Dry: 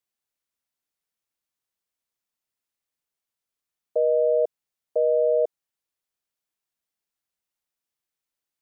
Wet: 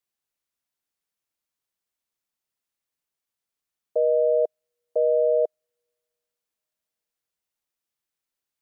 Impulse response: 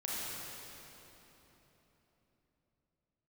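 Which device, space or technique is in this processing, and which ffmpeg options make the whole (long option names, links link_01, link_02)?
keyed gated reverb: -filter_complex "[0:a]asplit=3[link_01][link_02][link_03];[1:a]atrim=start_sample=2205[link_04];[link_02][link_04]afir=irnorm=-1:irlink=0[link_05];[link_03]apad=whole_len=379914[link_06];[link_05][link_06]sidechaingate=range=-49dB:threshold=-17dB:ratio=16:detection=peak,volume=-14dB[link_07];[link_01][link_07]amix=inputs=2:normalize=0"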